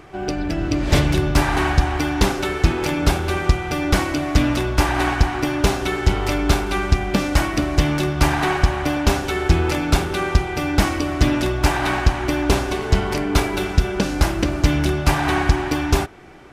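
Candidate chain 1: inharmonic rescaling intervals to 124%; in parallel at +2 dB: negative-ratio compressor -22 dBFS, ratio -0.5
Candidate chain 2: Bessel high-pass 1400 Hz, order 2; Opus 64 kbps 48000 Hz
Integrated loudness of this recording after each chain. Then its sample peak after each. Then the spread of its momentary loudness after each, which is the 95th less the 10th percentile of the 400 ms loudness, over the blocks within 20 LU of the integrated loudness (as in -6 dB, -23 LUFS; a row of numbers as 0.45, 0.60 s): -17.0, -27.5 LUFS; -2.5, -9.0 dBFS; 2, 4 LU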